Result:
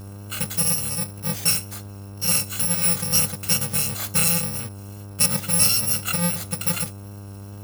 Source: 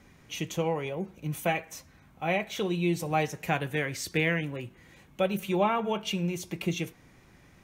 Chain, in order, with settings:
samples in bit-reversed order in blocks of 128 samples
hum with harmonics 100 Hz, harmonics 16, −45 dBFS −8 dB per octave
tape wow and flutter 19 cents
level +7.5 dB

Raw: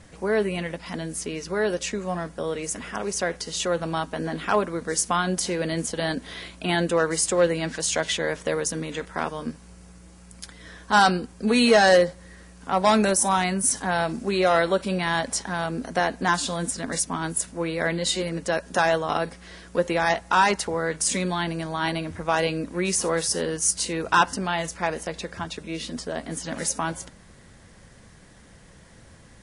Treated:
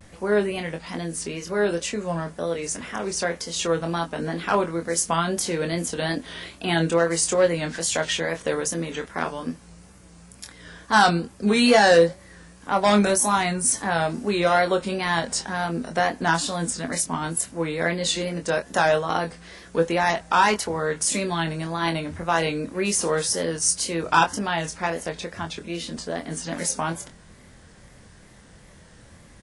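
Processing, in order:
tape wow and flutter 98 cents
double-tracking delay 24 ms −6.5 dB

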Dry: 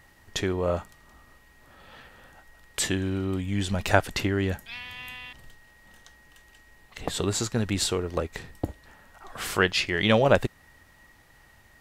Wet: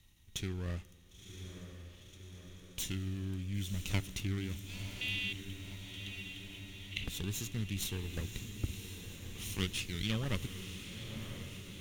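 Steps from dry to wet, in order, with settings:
lower of the sound and its delayed copy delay 0.32 ms
guitar amp tone stack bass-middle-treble 6-0-2
in parallel at −3 dB: speech leveller within 4 dB
0:05.01–0:07.04: on the sum: flat-topped bell 2,700 Hz +16 dB 1.2 octaves
on a send: feedback delay with all-pass diffusion 1,019 ms, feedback 69%, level −8.5 dB
on the sum: four-comb reverb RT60 3.4 s, combs from 27 ms, DRR 20 dB
level +1.5 dB

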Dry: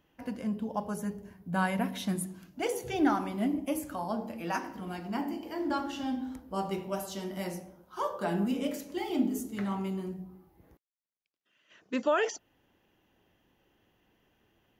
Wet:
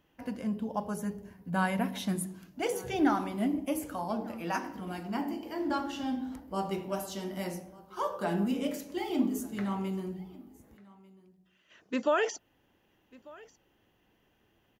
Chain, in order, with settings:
single-tap delay 1,194 ms −23 dB

